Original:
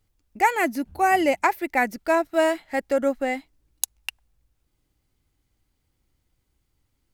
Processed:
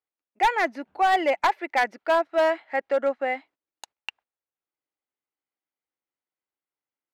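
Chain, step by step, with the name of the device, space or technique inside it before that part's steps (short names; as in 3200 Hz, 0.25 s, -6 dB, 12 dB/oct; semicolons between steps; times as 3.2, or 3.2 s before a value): walkie-talkie (BPF 520–2400 Hz; hard clip -17 dBFS, distortion -13 dB; gate -53 dBFS, range -15 dB); gain +2 dB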